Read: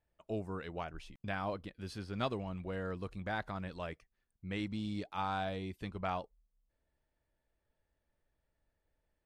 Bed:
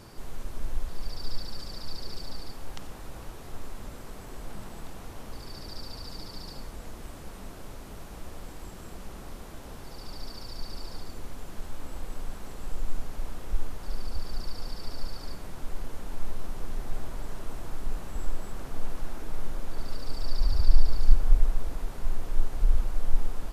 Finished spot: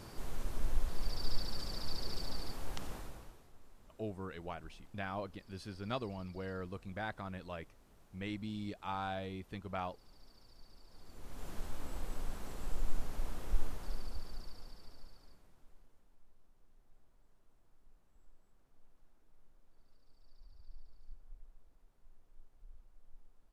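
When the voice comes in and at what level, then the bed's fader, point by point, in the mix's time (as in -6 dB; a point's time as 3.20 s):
3.70 s, -3.0 dB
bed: 2.95 s -2 dB
3.53 s -21.5 dB
10.87 s -21.5 dB
11.46 s -4 dB
13.67 s -4 dB
16.22 s -34 dB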